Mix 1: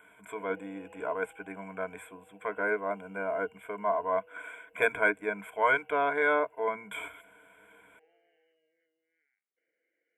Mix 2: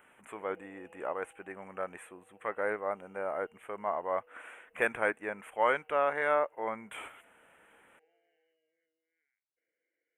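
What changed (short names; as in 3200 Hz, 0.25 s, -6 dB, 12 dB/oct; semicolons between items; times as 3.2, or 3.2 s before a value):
speech: remove ripple EQ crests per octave 1.7, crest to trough 17 dB; background -5.0 dB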